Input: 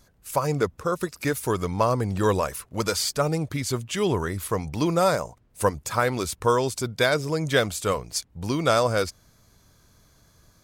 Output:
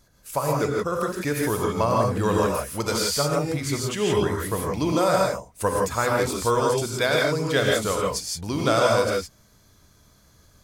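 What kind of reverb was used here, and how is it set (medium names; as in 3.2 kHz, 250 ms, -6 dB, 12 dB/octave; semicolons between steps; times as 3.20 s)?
gated-style reverb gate 190 ms rising, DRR -1.5 dB; trim -2 dB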